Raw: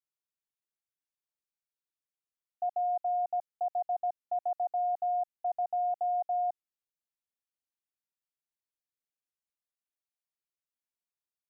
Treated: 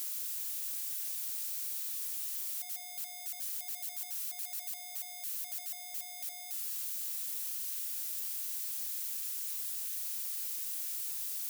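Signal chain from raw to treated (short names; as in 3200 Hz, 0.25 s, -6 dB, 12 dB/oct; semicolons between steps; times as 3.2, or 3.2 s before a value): infinite clipping; differentiator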